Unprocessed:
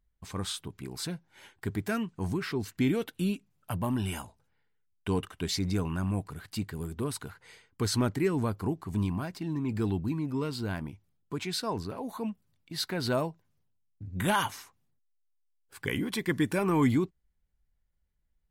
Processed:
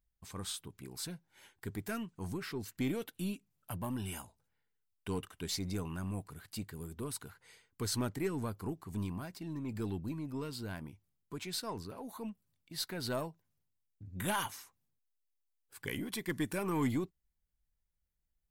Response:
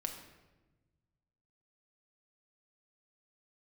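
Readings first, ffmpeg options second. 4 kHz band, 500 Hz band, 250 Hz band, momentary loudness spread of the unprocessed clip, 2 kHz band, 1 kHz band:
-6.0 dB, -8.0 dB, -8.0 dB, 12 LU, -7.5 dB, -7.5 dB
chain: -af "aeval=exprs='0.178*(cos(1*acos(clip(val(0)/0.178,-1,1)))-cos(1*PI/2))+0.00631*(cos(6*acos(clip(val(0)/0.178,-1,1)))-cos(6*PI/2))':c=same,crystalizer=i=1:c=0,volume=0.398"

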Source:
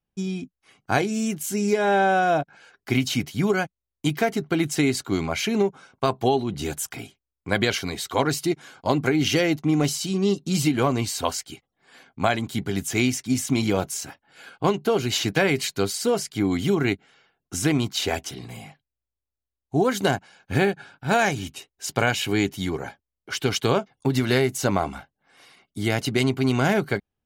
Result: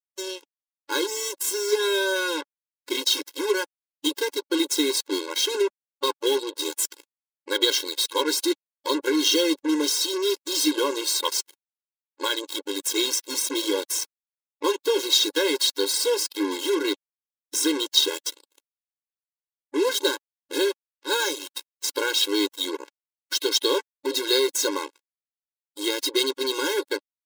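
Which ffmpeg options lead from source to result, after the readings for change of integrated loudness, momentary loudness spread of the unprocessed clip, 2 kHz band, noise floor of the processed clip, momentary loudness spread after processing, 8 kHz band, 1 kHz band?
0.0 dB, 11 LU, -3.0 dB, under -85 dBFS, 9 LU, +4.5 dB, -6.5 dB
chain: -af "highshelf=f=2900:t=q:w=3:g=6.5,acrusher=bits=3:mix=0:aa=0.5,afftfilt=real='re*eq(mod(floor(b*sr/1024/280),2),1)':imag='im*eq(mod(floor(b*sr/1024/280),2),1)':win_size=1024:overlap=0.75"

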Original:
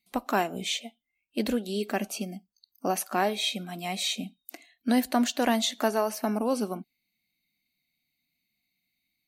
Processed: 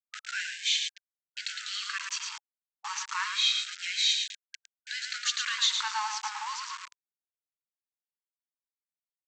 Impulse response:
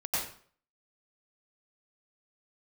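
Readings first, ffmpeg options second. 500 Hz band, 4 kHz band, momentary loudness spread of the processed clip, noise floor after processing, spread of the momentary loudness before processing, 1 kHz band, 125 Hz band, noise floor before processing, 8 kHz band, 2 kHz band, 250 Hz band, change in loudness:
under -40 dB, +5.5 dB, 16 LU, under -85 dBFS, 12 LU, -6.0 dB, under -40 dB, -81 dBFS, +2.0 dB, +2.5 dB, under -40 dB, -1.0 dB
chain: -filter_complex "[0:a]adynamicequalizer=threshold=0.00708:dfrequency=4100:dqfactor=2.5:tfrequency=4100:tqfactor=2.5:attack=5:release=100:ratio=0.375:range=2.5:mode=boostabove:tftype=bell,asplit=2[s0][s1];[s1]alimiter=limit=0.0841:level=0:latency=1:release=157,volume=0.891[s2];[s0][s2]amix=inputs=2:normalize=0,asoftclip=type=tanh:threshold=0.237,aecho=1:1:110|220|330:0.531|0.101|0.0192,aresample=16000,aeval=exprs='val(0)*gte(abs(val(0)),0.0335)':c=same,aresample=44100,afftfilt=real='re*gte(b*sr/1024,800*pow(1600/800,0.5+0.5*sin(2*PI*0.28*pts/sr)))':imag='im*gte(b*sr/1024,800*pow(1600/800,0.5+0.5*sin(2*PI*0.28*pts/sr)))':win_size=1024:overlap=0.75,volume=0.841"

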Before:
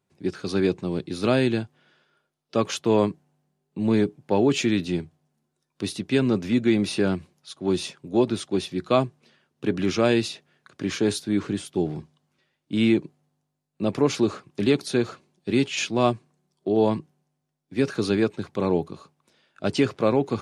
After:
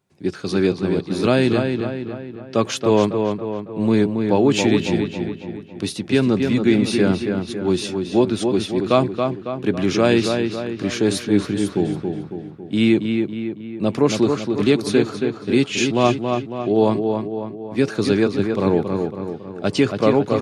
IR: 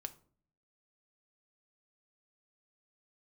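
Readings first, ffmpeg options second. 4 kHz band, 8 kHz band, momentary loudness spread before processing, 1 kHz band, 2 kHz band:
+4.5 dB, +4.0 dB, 11 LU, +5.5 dB, +5.0 dB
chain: -filter_complex "[0:a]asplit=2[s0][s1];[s1]adelay=276,lowpass=f=3100:p=1,volume=0.562,asplit=2[s2][s3];[s3]adelay=276,lowpass=f=3100:p=1,volume=0.53,asplit=2[s4][s5];[s5]adelay=276,lowpass=f=3100:p=1,volume=0.53,asplit=2[s6][s7];[s7]adelay=276,lowpass=f=3100:p=1,volume=0.53,asplit=2[s8][s9];[s9]adelay=276,lowpass=f=3100:p=1,volume=0.53,asplit=2[s10][s11];[s11]adelay=276,lowpass=f=3100:p=1,volume=0.53,asplit=2[s12][s13];[s13]adelay=276,lowpass=f=3100:p=1,volume=0.53[s14];[s0][s2][s4][s6][s8][s10][s12][s14]amix=inputs=8:normalize=0,volume=1.58"

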